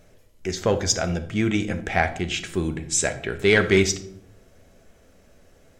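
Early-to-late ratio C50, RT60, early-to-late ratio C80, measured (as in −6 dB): 12.5 dB, 0.65 s, 16.0 dB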